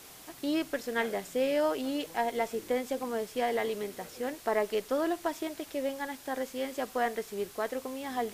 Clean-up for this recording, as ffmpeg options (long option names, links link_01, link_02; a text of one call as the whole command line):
ffmpeg -i in.wav -af "afwtdn=0.0032" out.wav